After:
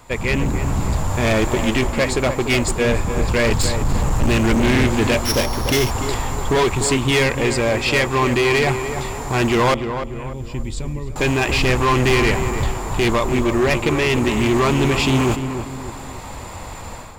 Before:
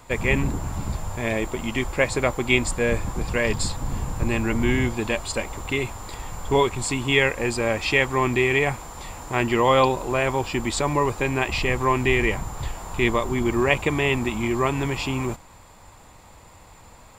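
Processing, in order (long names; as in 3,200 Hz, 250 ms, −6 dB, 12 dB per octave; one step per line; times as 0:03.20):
0:05.25–0:05.91: samples sorted by size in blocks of 8 samples
0:09.74–0:11.16: guitar amp tone stack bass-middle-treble 10-0-1
automatic gain control gain up to 13 dB
hard clipping −15.5 dBFS, distortion −8 dB
feedback echo with a low-pass in the loop 295 ms, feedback 44%, low-pass 1,800 Hz, level −8 dB
highs frequency-modulated by the lows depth 0.2 ms
level +2 dB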